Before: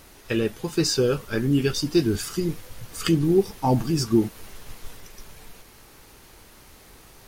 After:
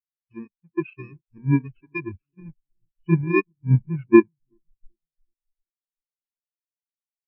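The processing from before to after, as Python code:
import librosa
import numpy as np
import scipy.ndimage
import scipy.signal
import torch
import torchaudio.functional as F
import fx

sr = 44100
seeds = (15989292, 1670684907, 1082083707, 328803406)

y = fx.bit_reversed(x, sr, seeds[0], block=64)
y = scipy.signal.sosfilt(scipy.signal.butter(2, 3700.0, 'lowpass', fs=sr, output='sos'), y)
y = fx.peak_eq(y, sr, hz=2300.0, db=10.0, octaves=2.5)
y = fx.echo_filtered(y, sr, ms=379, feedback_pct=64, hz=1100.0, wet_db=-13.0)
y = fx.spectral_expand(y, sr, expansion=4.0)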